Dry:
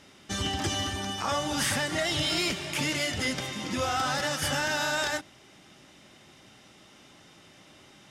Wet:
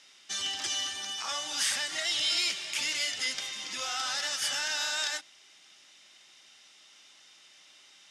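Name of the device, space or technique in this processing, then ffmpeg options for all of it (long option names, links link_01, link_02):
piezo pickup straight into a mixer: -af "lowpass=5500,aderivative,volume=8dB"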